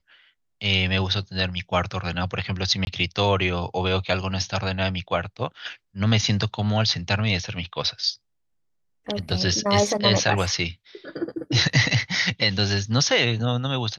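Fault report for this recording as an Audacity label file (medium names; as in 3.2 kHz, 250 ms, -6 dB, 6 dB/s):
2.850000	2.870000	dropout 21 ms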